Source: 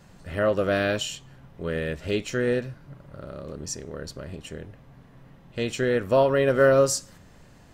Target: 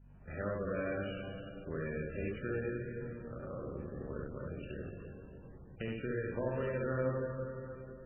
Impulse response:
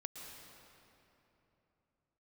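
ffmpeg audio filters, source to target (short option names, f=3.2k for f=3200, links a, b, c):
-filter_complex "[0:a]agate=range=-33dB:threshold=-44dB:ratio=3:detection=peak,aemphasis=mode=production:type=75fm,acrossover=split=250|2000[a][b][c];[a]acompressor=threshold=-36dB:ratio=4[d];[b]acompressor=threshold=-34dB:ratio=4[e];[c]acompressor=threshold=-41dB:ratio=4[f];[d][e][f]amix=inputs=3:normalize=0,aeval=exprs='val(0)+0.00316*(sin(2*PI*50*n/s)+sin(2*PI*2*50*n/s)/2+sin(2*PI*3*50*n/s)/3+sin(2*PI*4*50*n/s)/4+sin(2*PI*5*50*n/s)/5)':c=same,adynamicsmooth=sensitivity=2.5:basefreq=2.2k,asplit=2[g][h];[1:a]atrim=start_sample=2205,adelay=67[i];[h][i]afir=irnorm=-1:irlink=0,volume=3.5dB[j];[g][j]amix=inputs=2:normalize=0,asetrate=42336,aresample=44100,volume=-6.5dB" -ar 12000 -c:a libmp3lame -b:a 8k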